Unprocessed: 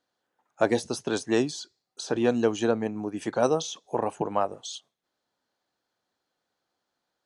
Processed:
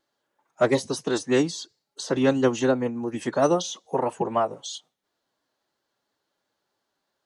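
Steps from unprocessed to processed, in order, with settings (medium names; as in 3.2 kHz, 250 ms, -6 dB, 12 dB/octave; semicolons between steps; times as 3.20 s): formant-preserving pitch shift +2 st; vibrato 3 Hz 26 cents; trim +3 dB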